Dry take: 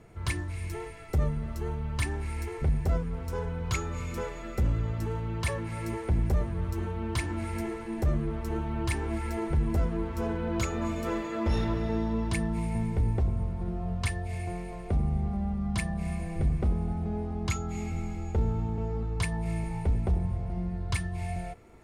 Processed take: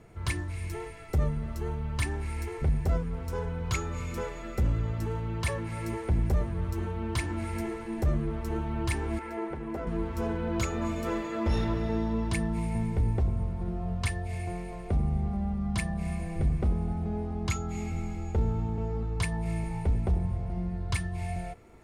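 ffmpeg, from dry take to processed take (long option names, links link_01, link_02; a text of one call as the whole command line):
ffmpeg -i in.wav -filter_complex "[0:a]asettb=1/sr,asplit=3[link_01][link_02][link_03];[link_01]atrim=end=9.194[link_04];[link_02]atrim=start=9.19:end=9.87,asetpts=PTS-STARTPTS,afade=type=in:duration=0.004:curve=qsin,afade=type=out:start_time=0.676:duration=0.004:curve=qsin,acrossover=split=240 2700:gain=0.141 1 0.251[link_05][link_06][link_07];[link_05][link_06][link_07]amix=inputs=3:normalize=0[link_08];[link_03]atrim=start=9.866[link_09];[link_04][link_08]acrossfade=duration=0.004:curve1=hsin:curve2=qsin[link_10];[link_10][link_09]acrossfade=duration=0.004:curve1=qsin:curve2=hsin" out.wav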